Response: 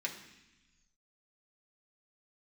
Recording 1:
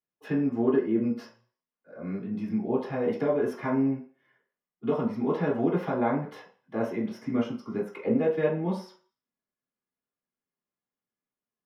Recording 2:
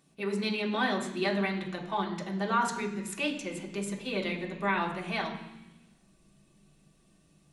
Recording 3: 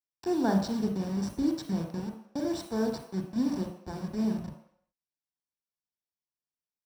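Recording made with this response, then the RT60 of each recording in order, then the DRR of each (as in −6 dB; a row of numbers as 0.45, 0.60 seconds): 2; 0.45 s, 0.95 s, non-exponential decay; −5.0, −1.5, 2.5 decibels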